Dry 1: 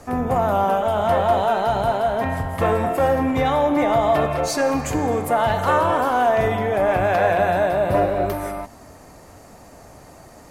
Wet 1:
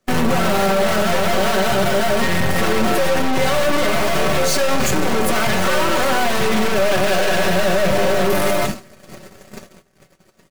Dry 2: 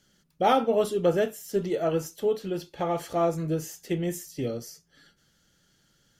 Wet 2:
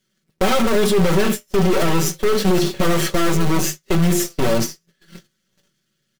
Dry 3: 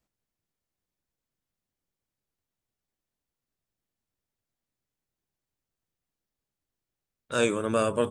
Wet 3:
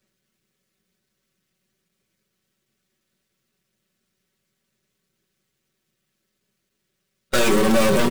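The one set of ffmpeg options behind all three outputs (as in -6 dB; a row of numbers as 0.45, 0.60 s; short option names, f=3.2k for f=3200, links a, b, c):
-filter_complex "[0:a]aeval=exprs='val(0)+0.5*0.02*sgn(val(0))':c=same,highshelf=f=6k:g=-7.5,asplit=2[a][b];[b]acrusher=bits=4:mix=0:aa=0.000001,volume=-7dB[c];[a][c]amix=inputs=2:normalize=0,highpass=81,equalizer=f=840:w=2:g=-14,bandreject=f=50:t=h:w=6,bandreject=f=100:t=h:w=6,bandreject=f=150:t=h:w=6,bandreject=f=200:t=h:w=6,bandreject=f=250:t=h:w=6,bandreject=f=300:t=h:w=6,bandreject=f=350:t=h:w=6,aeval=exprs='(tanh(50.1*val(0)+0.6)-tanh(0.6))/50.1':c=same,aecho=1:1:5.3:0.67,aecho=1:1:1098|2196:0.133|0.0213,agate=range=-49dB:threshold=-36dB:ratio=16:detection=peak,flanger=delay=8.4:depth=2.4:regen=-61:speed=0.34:shape=triangular,alimiter=level_in=33.5dB:limit=-1dB:release=50:level=0:latency=1,volume=-7.5dB"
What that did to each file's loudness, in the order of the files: +2.0, +9.0, +8.0 LU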